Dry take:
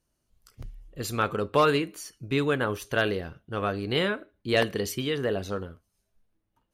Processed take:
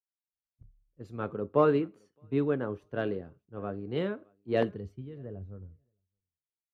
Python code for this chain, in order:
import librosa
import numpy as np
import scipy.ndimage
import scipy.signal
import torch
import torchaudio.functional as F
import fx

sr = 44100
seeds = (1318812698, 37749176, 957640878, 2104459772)

y = fx.bandpass_q(x, sr, hz=fx.steps((0.0, 250.0), (4.69, 100.0)), q=0.58)
y = fx.echo_feedback(y, sr, ms=619, feedback_pct=16, wet_db=-24)
y = fx.band_widen(y, sr, depth_pct=100)
y = F.gain(torch.from_numpy(y), -3.0).numpy()